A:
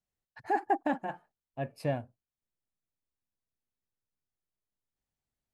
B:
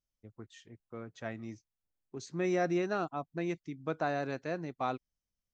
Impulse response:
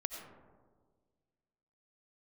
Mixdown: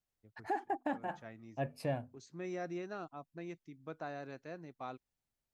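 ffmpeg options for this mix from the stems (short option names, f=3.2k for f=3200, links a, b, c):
-filter_complex "[0:a]bandreject=f=50:t=h:w=6,bandreject=f=100:t=h:w=6,bandreject=f=150:t=h:w=6,bandreject=f=200:t=h:w=6,bandreject=f=250:t=h:w=6,volume=-1dB[a];[1:a]volume=-10.5dB[b];[a][b]amix=inputs=2:normalize=0,alimiter=level_in=1.5dB:limit=-24dB:level=0:latency=1:release=297,volume=-1.5dB"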